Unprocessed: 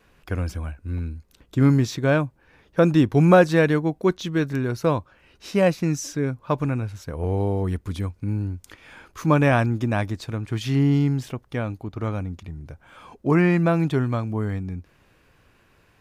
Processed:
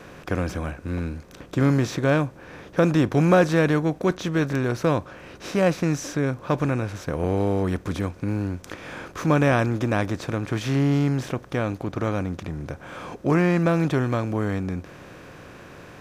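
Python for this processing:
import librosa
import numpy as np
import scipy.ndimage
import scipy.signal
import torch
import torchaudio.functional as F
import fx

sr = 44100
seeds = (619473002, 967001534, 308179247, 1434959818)

y = fx.bin_compress(x, sr, power=0.6)
y = y * librosa.db_to_amplitude(-4.5)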